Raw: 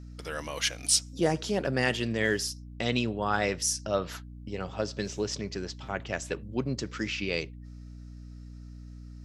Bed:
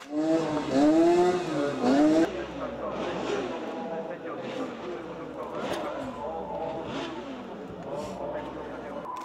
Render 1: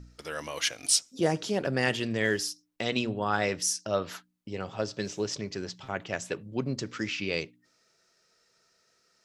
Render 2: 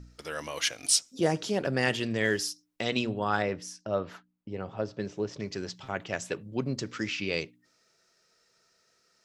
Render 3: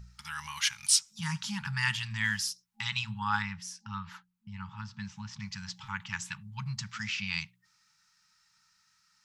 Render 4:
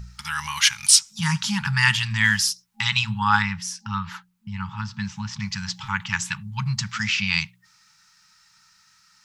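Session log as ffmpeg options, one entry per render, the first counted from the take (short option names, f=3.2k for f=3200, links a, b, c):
-af "bandreject=f=60:t=h:w=4,bandreject=f=120:t=h:w=4,bandreject=f=180:t=h:w=4,bandreject=f=240:t=h:w=4,bandreject=f=300:t=h:w=4"
-filter_complex "[0:a]asettb=1/sr,asplit=3[a][b][c];[a]atrim=end=3.424[d];[b]atrim=start=3.42:end=5.4,asetpts=PTS-STARTPTS,afade=t=in:d=0.004:c=qsin,afade=t=out:st=1.976:d=0.004:c=qsin,lowpass=f=1.2k:p=1[e];[c]atrim=start=5.396[f];[d][e]acrossfade=d=0.004:c1=hsin:c2=qsin[g];[g][f]acrossfade=d=0.004:c1=qsin:c2=hsin"
-af "afftfilt=real='re*(1-between(b*sr/4096,220,810))':imag='im*(1-between(b*sr/4096,220,810))':win_size=4096:overlap=0.75,equalizer=f=260:t=o:w=0.72:g=-6.5"
-af "volume=11dB,alimiter=limit=-1dB:level=0:latency=1"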